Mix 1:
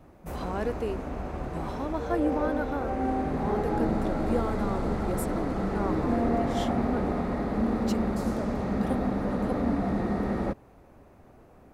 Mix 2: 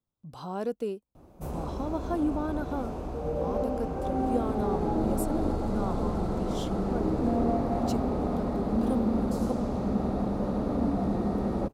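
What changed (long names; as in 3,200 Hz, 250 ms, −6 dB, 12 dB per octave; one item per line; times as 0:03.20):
background: entry +1.15 s
master: add parametric band 1,900 Hz −11.5 dB 0.84 octaves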